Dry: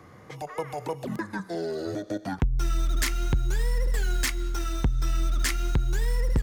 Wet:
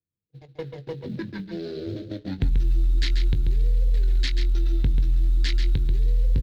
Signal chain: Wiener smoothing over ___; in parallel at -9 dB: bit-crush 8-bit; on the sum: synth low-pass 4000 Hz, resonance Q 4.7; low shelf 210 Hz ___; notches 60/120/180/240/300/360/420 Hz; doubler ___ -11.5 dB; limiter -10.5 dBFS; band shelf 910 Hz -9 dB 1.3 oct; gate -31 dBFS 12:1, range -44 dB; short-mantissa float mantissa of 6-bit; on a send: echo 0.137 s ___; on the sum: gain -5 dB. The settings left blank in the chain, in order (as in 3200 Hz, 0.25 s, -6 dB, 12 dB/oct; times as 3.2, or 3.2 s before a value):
41 samples, +9 dB, 21 ms, -7.5 dB